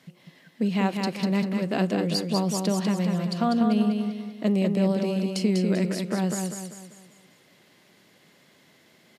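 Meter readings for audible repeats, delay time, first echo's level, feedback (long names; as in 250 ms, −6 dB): 5, 196 ms, −4.5 dB, 42%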